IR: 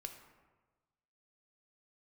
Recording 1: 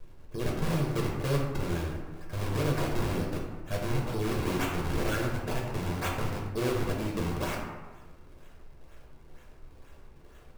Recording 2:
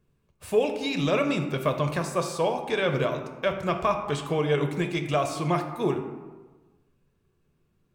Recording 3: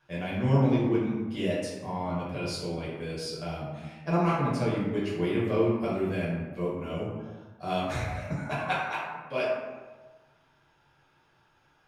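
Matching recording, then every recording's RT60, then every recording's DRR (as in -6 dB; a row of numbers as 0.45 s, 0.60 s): 2; 1.3 s, 1.3 s, 1.3 s; -2.0 dB, 5.0 dB, -7.5 dB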